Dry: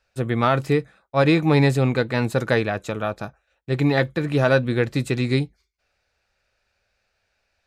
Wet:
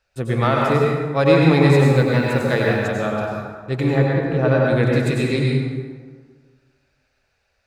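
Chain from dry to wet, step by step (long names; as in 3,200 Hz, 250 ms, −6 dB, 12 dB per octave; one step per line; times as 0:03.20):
0:01.75–0:02.82: mu-law and A-law mismatch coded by A
0:03.88–0:04.64: low-pass filter 1,200 Hz 6 dB per octave
dense smooth reverb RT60 1.6 s, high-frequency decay 0.55×, pre-delay 80 ms, DRR −2.5 dB
level −1 dB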